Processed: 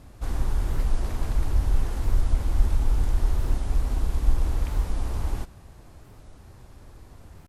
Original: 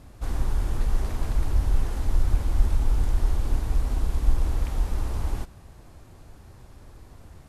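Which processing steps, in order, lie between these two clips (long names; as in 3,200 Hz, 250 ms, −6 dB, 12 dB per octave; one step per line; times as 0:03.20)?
wow of a warped record 45 rpm, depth 250 cents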